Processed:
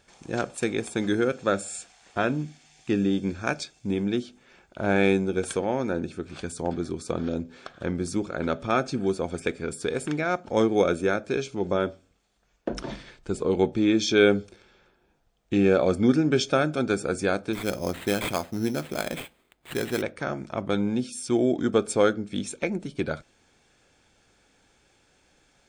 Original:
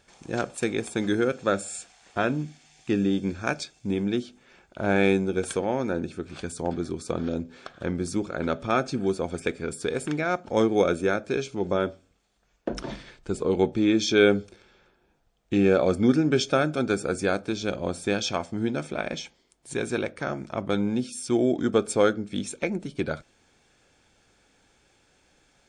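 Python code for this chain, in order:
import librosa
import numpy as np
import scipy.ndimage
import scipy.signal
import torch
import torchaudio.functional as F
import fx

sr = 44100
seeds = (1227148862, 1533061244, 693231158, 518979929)

y = fx.sample_hold(x, sr, seeds[0], rate_hz=5700.0, jitter_pct=0, at=(17.53, 20.02))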